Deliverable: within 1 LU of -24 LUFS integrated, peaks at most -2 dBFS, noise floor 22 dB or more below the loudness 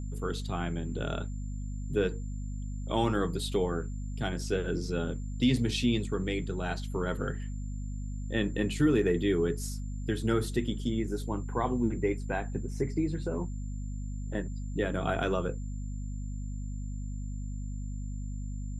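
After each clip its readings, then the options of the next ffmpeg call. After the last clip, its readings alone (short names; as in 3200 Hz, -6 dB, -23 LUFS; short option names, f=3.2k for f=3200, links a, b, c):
hum 50 Hz; harmonics up to 250 Hz; hum level -34 dBFS; steady tone 7200 Hz; tone level -58 dBFS; loudness -32.5 LUFS; peak -14.5 dBFS; loudness target -24.0 LUFS
-> -af "bandreject=f=50:t=h:w=6,bandreject=f=100:t=h:w=6,bandreject=f=150:t=h:w=6,bandreject=f=200:t=h:w=6,bandreject=f=250:t=h:w=6"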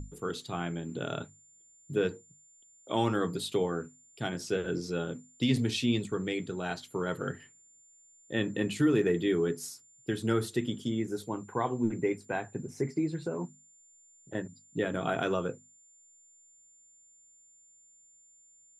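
hum none; steady tone 7200 Hz; tone level -58 dBFS
-> -af "bandreject=f=7.2k:w=30"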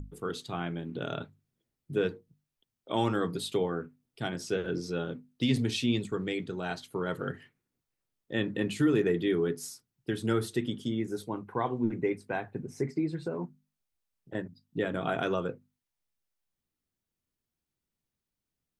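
steady tone none; loudness -32.5 LUFS; peak -15.0 dBFS; loudness target -24.0 LUFS
-> -af "volume=8.5dB"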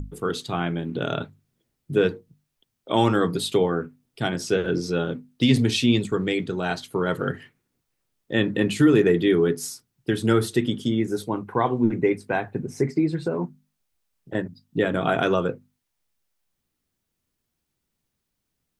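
loudness -24.0 LUFS; peak -6.5 dBFS; noise floor -79 dBFS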